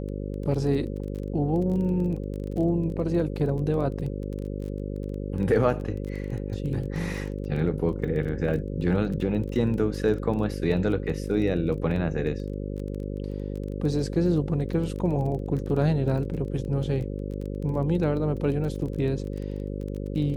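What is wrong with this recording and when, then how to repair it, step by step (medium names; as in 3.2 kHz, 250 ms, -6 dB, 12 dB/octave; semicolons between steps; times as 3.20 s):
buzz 50 Hz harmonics 11 -32 dBFS
crackle 20 per s -33 dBFS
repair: de-click; de-hum 50 Hz, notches 11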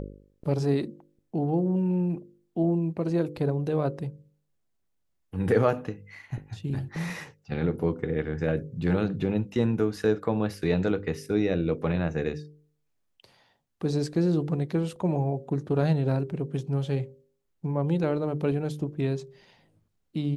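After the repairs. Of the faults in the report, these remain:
nothing left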